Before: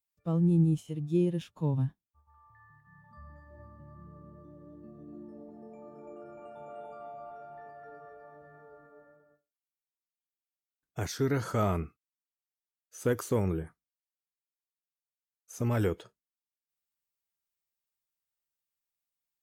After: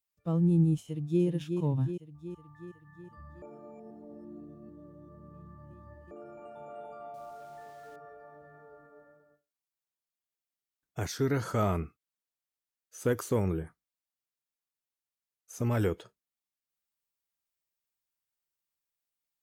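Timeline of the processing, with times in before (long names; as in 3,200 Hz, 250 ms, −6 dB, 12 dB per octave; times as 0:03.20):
0:00.82–0:01.23: delay throw 370 ms, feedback 60%, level −6 dB
0:03.42–0:06.11: reverse
0:07.14–0:07.96: centre clipping without the shift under −56.5 dBFS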